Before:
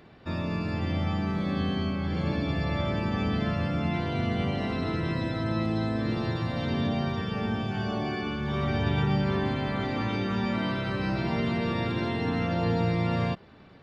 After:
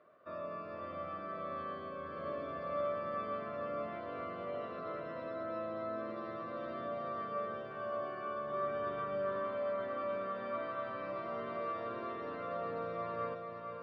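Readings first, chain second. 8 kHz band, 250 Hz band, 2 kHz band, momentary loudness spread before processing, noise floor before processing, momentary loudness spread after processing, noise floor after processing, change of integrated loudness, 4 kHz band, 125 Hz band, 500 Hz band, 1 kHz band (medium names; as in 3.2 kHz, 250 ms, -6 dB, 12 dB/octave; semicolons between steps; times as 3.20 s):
no reading, -20.0 dB, -13.0 dB, 4 LU, -51 dBFS, 6 LU, -45 dBFS, -11.0 dB, -21.5 dB, -26.5 dB, -4.5 dB, -5.0 dB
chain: two resonant band-passes 840 Hz, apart 0.93 oct; on a send: echo that smears into a reverb 477 ms, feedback 49%, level -5.5 dB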